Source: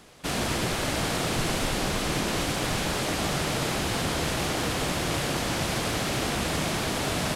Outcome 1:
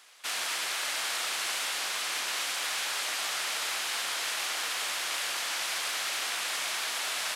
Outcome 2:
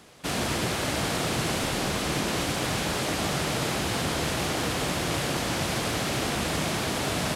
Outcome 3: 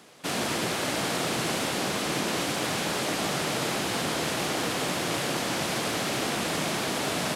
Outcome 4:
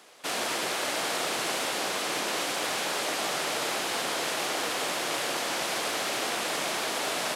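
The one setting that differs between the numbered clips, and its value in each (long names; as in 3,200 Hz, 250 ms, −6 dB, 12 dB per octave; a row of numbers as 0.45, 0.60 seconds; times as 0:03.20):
high-pass filter, corner frequency: 1,300, 55, 170, 450 Hertz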